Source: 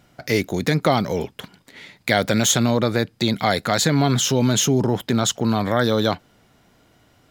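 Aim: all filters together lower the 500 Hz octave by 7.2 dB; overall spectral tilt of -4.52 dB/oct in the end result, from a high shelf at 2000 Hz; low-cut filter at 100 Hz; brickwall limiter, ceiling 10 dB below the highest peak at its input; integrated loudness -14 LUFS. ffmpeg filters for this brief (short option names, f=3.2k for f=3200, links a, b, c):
-af "highpass=100,equalizer=f=500:t=o:g=-9,highshelf=f=2k:g=-5,volume=13dB,alimiter=limit=-3.5dB:level=0:latency=1"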